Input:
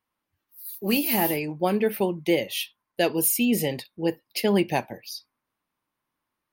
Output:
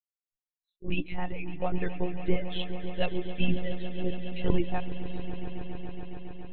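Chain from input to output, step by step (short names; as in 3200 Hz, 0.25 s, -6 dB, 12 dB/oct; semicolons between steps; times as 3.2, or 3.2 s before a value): per-bin expansion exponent 2; in parallel at +2.5 dB: compressor, threshold -41 dBFS, peak gain reduction 20.5 dB; on the sum: monotone LPC vocoder at 8 kHz 180 Hz; low shelf 110 Hz +10 dB; swelling echo 0.139 s, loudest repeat 5, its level -15.5 dB; gain -6.5 dB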